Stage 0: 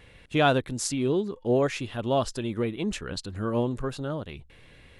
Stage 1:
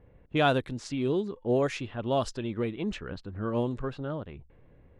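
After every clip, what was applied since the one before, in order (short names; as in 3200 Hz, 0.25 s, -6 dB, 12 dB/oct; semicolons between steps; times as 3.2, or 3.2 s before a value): low-pass opened by the level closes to 700 Hz, open at -20.5 dBFS; gain -2.5 dB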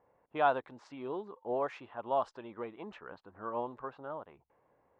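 band-pass 920 Hz, Q 2.3; gain +2.5 dB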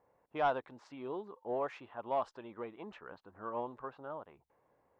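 soft clip -19 dBFS, distortion -20 dB; gain -2 dB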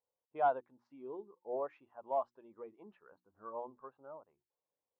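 notches 60/120/180/240/300/360 Hz; spectral expander 1.5:1; gain +1 dB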